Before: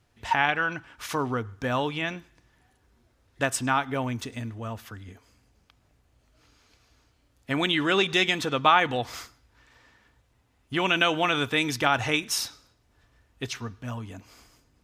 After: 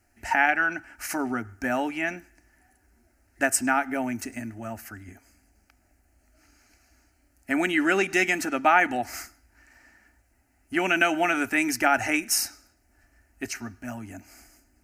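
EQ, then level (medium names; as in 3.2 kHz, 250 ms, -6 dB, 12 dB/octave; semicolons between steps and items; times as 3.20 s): treble shelf 4.7 kHz +6 dB; static phaser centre 710 Hz, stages 8; +3.5 dB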